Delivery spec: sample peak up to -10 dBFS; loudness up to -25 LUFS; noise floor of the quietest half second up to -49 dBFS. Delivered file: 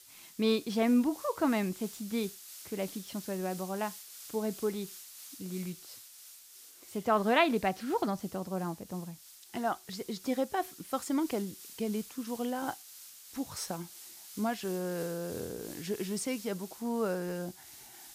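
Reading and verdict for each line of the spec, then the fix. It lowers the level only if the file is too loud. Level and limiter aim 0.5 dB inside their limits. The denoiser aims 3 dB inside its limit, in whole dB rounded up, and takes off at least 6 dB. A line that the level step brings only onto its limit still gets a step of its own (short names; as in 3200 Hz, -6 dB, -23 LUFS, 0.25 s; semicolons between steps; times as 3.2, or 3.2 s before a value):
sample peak -13.0 dBFS: OK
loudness -34.0 LUFS: OK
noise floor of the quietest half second -54 dBFS: OK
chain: none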